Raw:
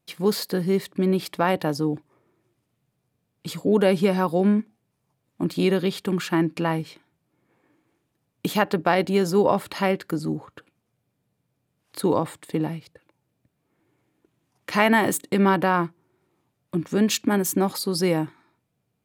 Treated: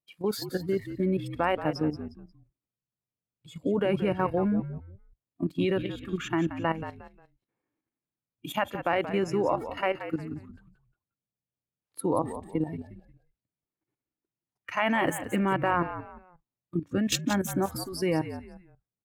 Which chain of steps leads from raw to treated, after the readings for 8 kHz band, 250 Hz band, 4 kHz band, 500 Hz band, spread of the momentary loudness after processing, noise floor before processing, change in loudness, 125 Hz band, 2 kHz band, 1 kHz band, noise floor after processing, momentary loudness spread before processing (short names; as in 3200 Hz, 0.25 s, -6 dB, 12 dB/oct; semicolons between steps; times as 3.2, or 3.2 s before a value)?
-7.0 dB, -6.5 dB, -6.5 dB, -6.0 dB, 14 LU, -76 dBFS, -6.0 dB, -5.5 dB, -5.5 dB, -5.0 dB, under -85 dBFS, 11 LU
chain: spectral noise reduction 16 dB; level quantiser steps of 12 dB; frequency-shifting echo 0.178 s, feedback 31%, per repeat -60 Hz, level -11 dB; gain -1 dB